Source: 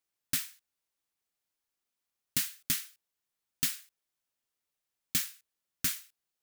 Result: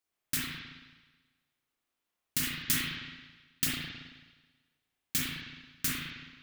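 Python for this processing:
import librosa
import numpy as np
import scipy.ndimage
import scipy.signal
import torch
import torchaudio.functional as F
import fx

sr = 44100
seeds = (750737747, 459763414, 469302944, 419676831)

y = fx.leveller(x, sr, passes=1, at=(2.43, 3.64))
y = fx.rev_spring(y, sr, rt60_s=1.3, pass_ms=(35, 54), chirp_ms=55, drr_db=-6.0)
y = F.gain(torch.from_numpy(y), -1.5).numpy()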